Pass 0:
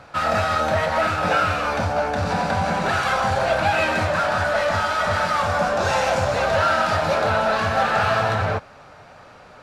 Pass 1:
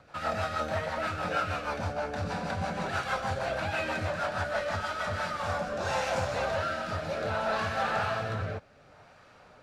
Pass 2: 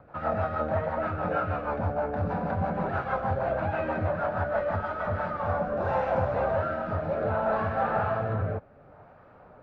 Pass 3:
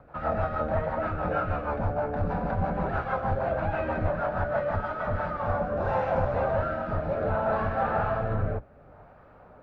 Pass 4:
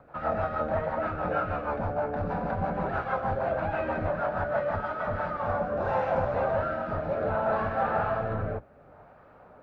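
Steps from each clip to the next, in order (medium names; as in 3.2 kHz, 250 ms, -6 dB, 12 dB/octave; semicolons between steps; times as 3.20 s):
rotary cabinet horn 6.3 Hz, later 0.65 Hz, at 4.94 s; trim -8 dB
low-pass 1.1 kHz 12 dB/octave; trim +5 dB
octave divider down 2 oct, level -3 dB
bass shelf 100 Hz -9 dB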